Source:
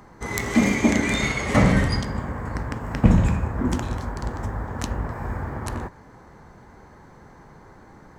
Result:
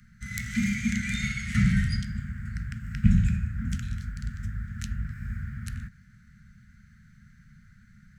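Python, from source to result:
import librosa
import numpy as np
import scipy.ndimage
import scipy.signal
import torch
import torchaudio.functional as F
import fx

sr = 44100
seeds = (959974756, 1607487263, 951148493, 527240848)

y = scipy.signal.sosfilt(scipy.signal.cheby1(5, 1.0, [220.0, 1400.0], 'bandstop', fs=sr, output='sos'), x)
y = fx.low_shelf(y, sr, hz=430.0, db=4.0)
y = y * librosa.db_to_amplitude(-6.5)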